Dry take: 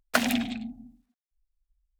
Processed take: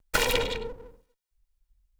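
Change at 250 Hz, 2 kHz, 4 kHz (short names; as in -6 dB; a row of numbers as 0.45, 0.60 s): -13.0, +0.5, +4.0 dB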